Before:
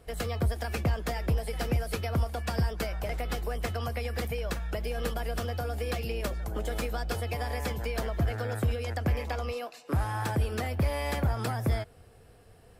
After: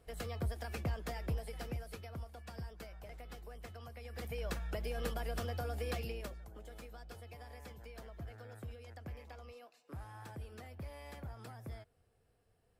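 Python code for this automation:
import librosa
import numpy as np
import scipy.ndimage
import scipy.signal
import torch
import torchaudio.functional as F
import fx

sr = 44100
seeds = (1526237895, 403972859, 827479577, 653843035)

y = fx.gain(x, sr, db=fx.line((1.32, -9.5), (2.19, -17.5), (3.97, -17.5), (4.43, -6.5), (6.01, -6.5), (6.53, -19.0)))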